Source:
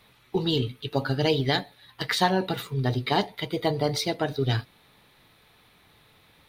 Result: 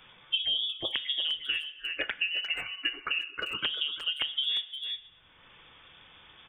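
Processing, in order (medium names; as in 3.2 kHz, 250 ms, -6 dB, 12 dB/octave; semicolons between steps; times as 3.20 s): 1.34–3.59 s: steep high-pass 540 Hz 96 dB/octave; spectral noise reduction 27 dB; low-pass that closes with the level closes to 830 Hz, closed at -25.5 dBFS; compression 8:1, threshold -28 dBFS, peak gain reduction 9 dB; integer overflow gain 19.5 dB; FDN reverb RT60 0.73 s, low-frequency decay 0.75×, high-frequency decay 0.75×, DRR 12.5 dB; frequency inversion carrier 3.5 kHz; speakerphone echo 350 ms, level -12 dB; three bands compressed up and down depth 100%; trim +1 dB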